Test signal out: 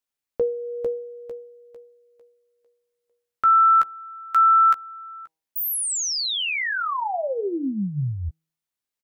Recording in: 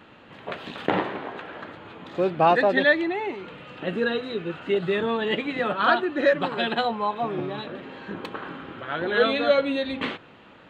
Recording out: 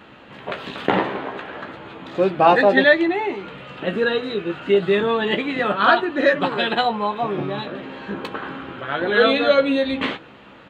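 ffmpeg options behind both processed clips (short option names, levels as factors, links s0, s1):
-filter_complex "[0:a]asplit=2[s0][s1];[s1]adelay=15,volume=0.398[s2];[s0][s2]amix=inputs=2:normalize=0,bandreject=f=159.8:t=h:w=4,bandreject=f=319.6:t=h:w=4,bandreject=f=479.4:t=h:w=4,bandreject=f=639.2:t=h:w=4,bandreject=f=799:t=h:w=4,bandreject=f=958.8:t=h:w=4,volume=1.68"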